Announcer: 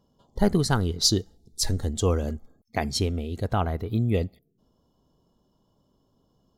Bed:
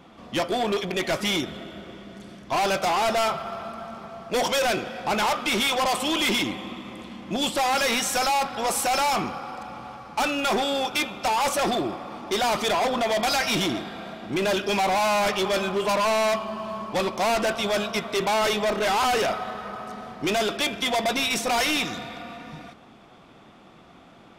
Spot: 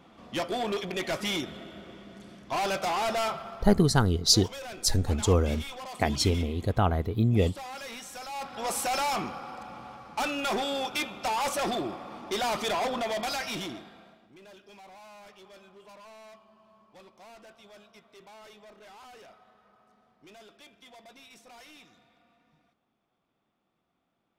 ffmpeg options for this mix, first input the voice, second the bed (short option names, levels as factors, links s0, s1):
-filter_complex "[0:a]adelay=3250,volume=1.06[s0];[1:a]volume=2.11,afade=t=out:st=3.27:d=0.62:silence=0.251189,afade=t=in:st=8.28:d=0.44:silence=0.251189,afade=t=out:st=12.85:d=1.48:silence=0.0749894[s1];[s0][s1]amix=inputs=2:normalize=0"